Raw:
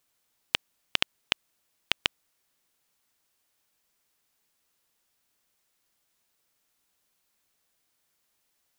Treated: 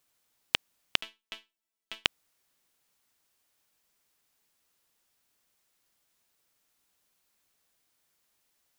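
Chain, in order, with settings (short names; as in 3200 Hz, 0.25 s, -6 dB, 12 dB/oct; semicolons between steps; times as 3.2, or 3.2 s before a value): 1.01–2.05 resonator bank A3 fifth, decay 0.22 s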